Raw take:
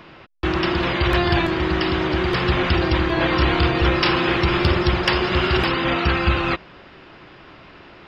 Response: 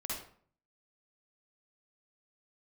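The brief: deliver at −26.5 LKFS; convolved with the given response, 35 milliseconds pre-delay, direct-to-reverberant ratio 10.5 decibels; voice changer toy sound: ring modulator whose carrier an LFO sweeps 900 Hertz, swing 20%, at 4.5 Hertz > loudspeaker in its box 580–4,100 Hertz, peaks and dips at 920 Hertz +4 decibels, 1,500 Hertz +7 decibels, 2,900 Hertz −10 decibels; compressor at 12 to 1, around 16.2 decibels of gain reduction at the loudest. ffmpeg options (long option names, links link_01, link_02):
-filter_complex "[0:a]acompressor=threshold=-30dB:ratio=12,asplit=2[link_01][link_02];[1:a]atrim=start_sample=2205,adelay=35[link_03];[link_02][link_03]afir=irnorm=-1:irlink=0,volume=-12dB[link_04];[link_01][link_04]amix=inputs=2:normalize=0,aeval=exprs='val(0)*sin(2*PI*900*n/s+900*0.2/4.5*sin(2*PI*4.5*n/s))':channel_layout=same,highpass=580,equalizer=frequency=920:width_type=q:width=4:gain=4,equalizer=frequency=1500:width_type=q:width=4:gain=7,equalizer=frequency=2900:width_type=q:width=4:gain=-10,lowpass=frequency=4100:width=0.5412,lowpass=frequency=4100:width=1.3066,volume=8dB"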